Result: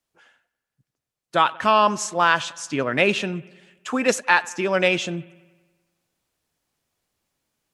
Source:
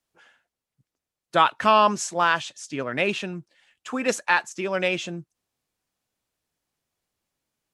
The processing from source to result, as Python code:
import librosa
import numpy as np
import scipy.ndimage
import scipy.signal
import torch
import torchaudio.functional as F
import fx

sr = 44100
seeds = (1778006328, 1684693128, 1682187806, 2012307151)

y = fx.rider(x, sr, range_db=3, speed_s=0.5)
y = fx.echo_bbd(y, sr, ms=94, stages=2048, feedback_pct=61, wet_db=-22)
y = y * 10.0 ** (3.0 / 20.0)